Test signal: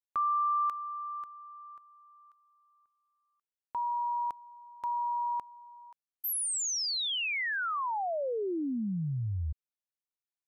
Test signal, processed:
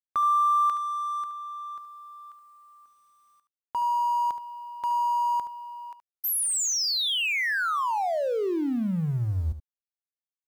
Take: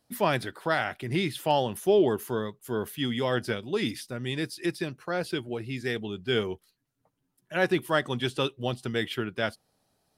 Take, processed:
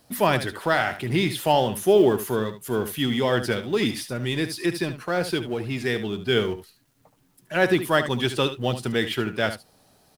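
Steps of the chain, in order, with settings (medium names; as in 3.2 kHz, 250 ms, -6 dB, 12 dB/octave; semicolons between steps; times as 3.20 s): companding laws mixed up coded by mu; delay 73 ms -11.5 dB; trim +4 dB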